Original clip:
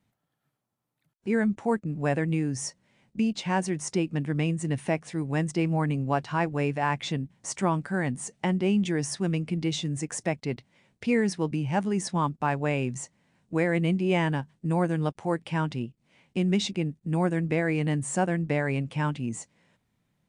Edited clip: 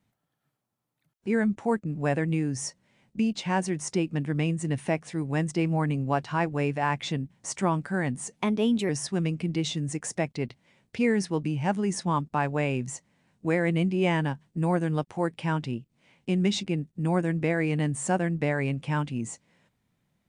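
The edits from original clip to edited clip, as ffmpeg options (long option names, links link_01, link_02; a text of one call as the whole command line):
ffmpeg -i in.wav -filter_complex "[0:a]asplit=3[link_01][link_02][link_03];[link_01]atrim=end=8.364[link_04];[link_02]atrim=start=8.36:end=8.97,asetpts=PTS-STARTPTS,asetrate=50715,aresample=44100,atrim=end_sample=23392,asetpts=PTS-STARTPTS[link_05];[link_03]atrim=start=8.966[link_06];[link_04][link_05]acrossfade=duration=0.004:curve1=hsin:curve2=hsin[link_07];[link_07][link_06]acrossfade=duration=0.004:curve1=hsin:curve2=hsin" out.wav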